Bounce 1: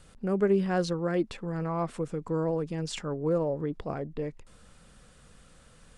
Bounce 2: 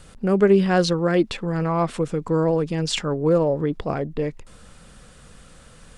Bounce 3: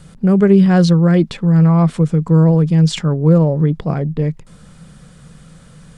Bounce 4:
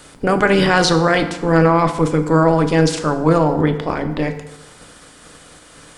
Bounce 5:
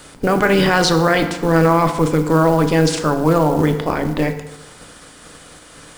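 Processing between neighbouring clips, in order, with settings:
dynamic equaliser 3,500 Hz, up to +5 dB, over −52 dBFS, Q 0.89; level +8.5 dB
parametric band 160 Hz +14.5 dB 0.7 octaves; notch filter 2,700 Hz, Q 17; level +1 dB
ceiling on every frequency bin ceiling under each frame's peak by 24 dB; feedback delay network reverb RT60 1 s, low-frequency decay 0.95×, high-frequency decay 0.7×, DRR 6.5 dB; level −3.5 dB
in parallel at +0.5 dB: brickwall limiter −9.5 dBFS, peak gain reduction 8 dB; on the sum: log-companded quantiser 6 bits; level −4.5 dB

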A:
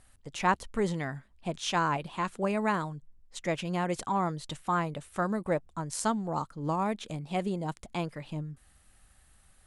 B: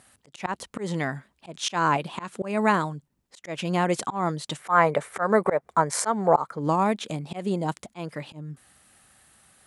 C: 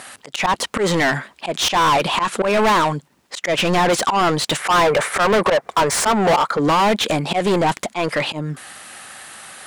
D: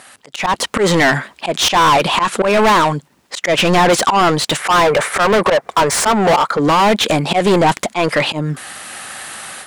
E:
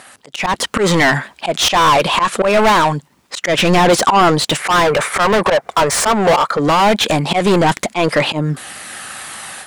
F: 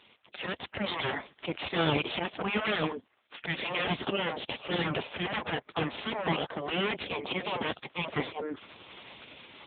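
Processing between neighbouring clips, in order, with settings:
high-pass filter 150 Hz 12 dB per octave; gain on a spectral selection 0:04.60–0:06.59, 370–2,400 Hz +10 dB; volume swells 188 ms; level +7.5 dB
mid-hump overdrive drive 34 dB, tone 4,500 Hz, clips at −4.5 dBFS; level −3.5 dB
automatic gain control gain up to 12 dB; level −4 dB
phase shifter 0.24 Hz, delay 1.9 ms, feedback 21%
gate on every frequency bin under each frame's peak −10 dB weak; dynamic equaliser 1,400 Hz, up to −8 dB, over −34 dBFS, Q 0.88; level −4.5 dB; AMR narrowband 6.7 kbit/s 8,000 Hz

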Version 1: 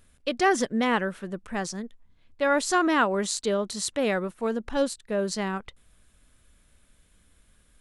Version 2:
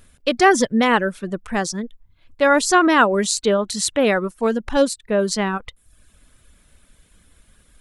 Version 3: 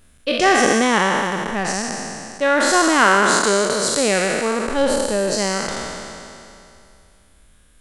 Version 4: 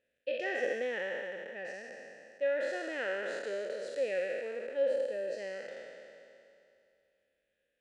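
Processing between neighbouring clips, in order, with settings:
reverb reduction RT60 0.57 s; level +8.5 dB
peak hold with a decay on every bin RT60 2.63 s; level −4 dB
formant filter e; level −8 dB

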